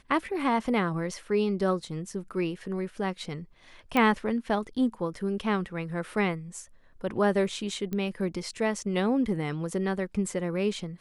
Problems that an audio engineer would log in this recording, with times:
0:03.97: click −13 dBFS
0:07.93: click −20 dBFS

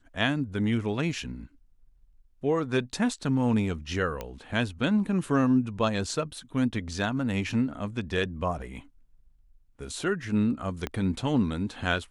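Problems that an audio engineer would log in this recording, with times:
0:04.21: click −19 dBFS
0:10.87: click −17 dBFS

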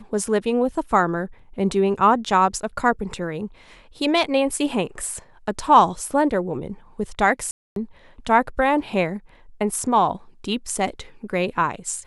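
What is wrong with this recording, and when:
0:07.51–0:07.76: drop-out 252 ms

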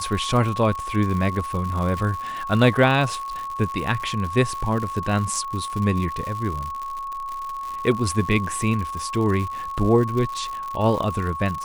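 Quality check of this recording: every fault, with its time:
surface crackle 140 per second −28 dBFS
whistle 1,100 Hz −28 dBFS

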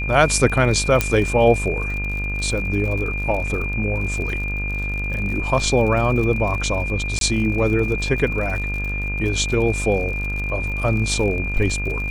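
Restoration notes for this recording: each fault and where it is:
mains buzz 50 Hz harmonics 35 −26 dBFS
surface crackle 58 per second −28 dBFS
whistle 2,400 Hz −26 dBFS
0:01.01: click −2 dBFS
0:03.47: drop-out 3.9 ms
0:07.19–0:07.21: drop-out 22 ms

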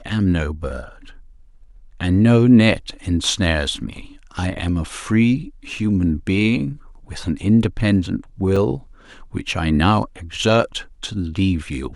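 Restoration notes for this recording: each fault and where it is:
0:08.56: drop-out 2.7 ms

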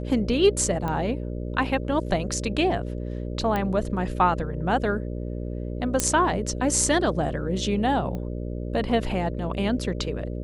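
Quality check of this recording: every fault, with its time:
mains buzz 60 Hz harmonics 10 −31 dBFS
0:00.88: click −17 dBFS
0:03.56: click −14 dBFS
0:06.00: click −5 dBFS
0:08.15: click −22 dBFS

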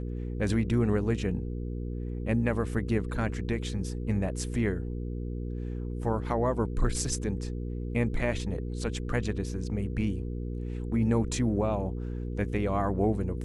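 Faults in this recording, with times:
mains hum 60 Hz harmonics 8 −34 dBFS

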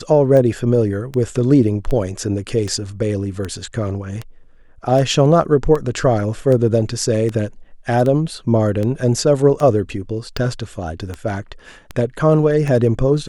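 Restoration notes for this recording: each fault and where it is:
scratch tick 78 rpm −12 dBFS

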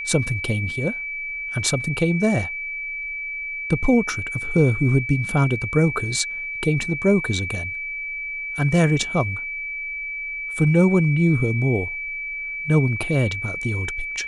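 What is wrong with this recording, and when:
whistle 2,300 Hz −27 dBFS

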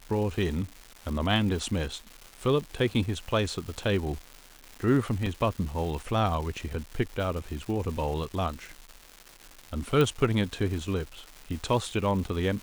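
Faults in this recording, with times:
surface crackle 440 per second −36 dBFS
0:05.26: drop-out 3.9 ms
0:10.01: click

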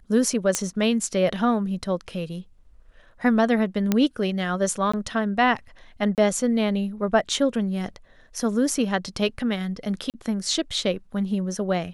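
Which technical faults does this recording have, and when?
0:00.55: click −7 dBFS
0:03.92: click −7 dBFS
0:04.92–0:04.93: drop-out 15 ms
0:06.15–0:06.18: drop-out 28 ms
0:10.10–0:10.14: drop-out 38 ms

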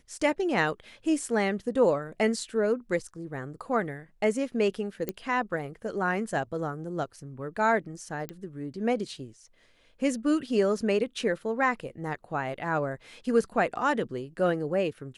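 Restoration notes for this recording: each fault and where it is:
0:05.09: click −16 dBFS
0:08.29: click −20 dBFS

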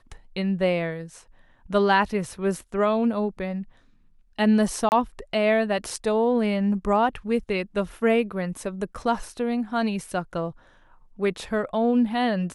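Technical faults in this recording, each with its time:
0:04.89–0:04.92: drop-out 29 ms

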